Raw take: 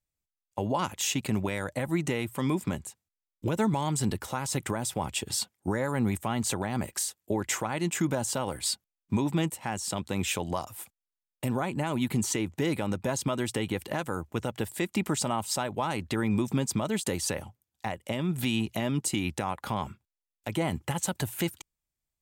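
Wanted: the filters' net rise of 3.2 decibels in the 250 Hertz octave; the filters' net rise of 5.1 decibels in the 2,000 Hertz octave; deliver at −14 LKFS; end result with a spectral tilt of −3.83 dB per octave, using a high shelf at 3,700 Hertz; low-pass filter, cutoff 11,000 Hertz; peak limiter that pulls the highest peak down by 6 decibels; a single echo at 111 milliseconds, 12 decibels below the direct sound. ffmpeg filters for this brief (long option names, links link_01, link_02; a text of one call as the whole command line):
ffmpeg -i in.wav -af "lowpass=11000,equalizer=frequency=250:width_type=o:gain=4,equalizer=frequency=2000:width_type=o:gain=4,highshelf=frequency=3700:gain=8,alimiter=limit=-17dB:level=0:latency=1,aecho=1:1:111:0.251,volume=14.5dB" out.wav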